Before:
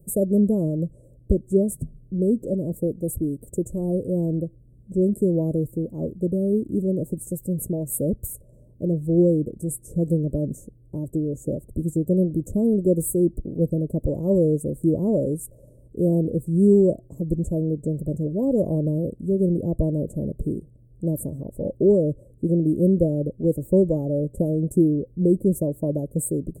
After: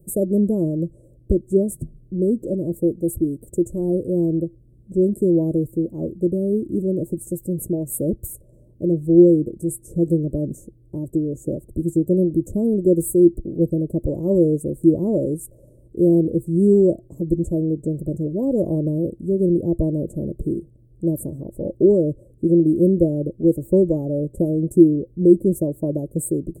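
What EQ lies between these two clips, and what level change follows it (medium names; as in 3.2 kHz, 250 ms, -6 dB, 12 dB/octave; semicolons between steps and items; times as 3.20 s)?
peaking EQ 340 Hz +9.5 dB 0.22 oct; 0.0 dB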